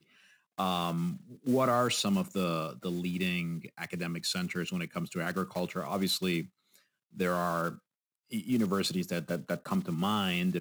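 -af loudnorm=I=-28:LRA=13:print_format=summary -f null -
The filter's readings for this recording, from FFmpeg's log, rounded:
Input Integrated:    -32.1 LUFS
Input True Peak:     -15.7 dBTP
Input LRA:             2.5 LU
Input Threshold:     -42.4 LUFS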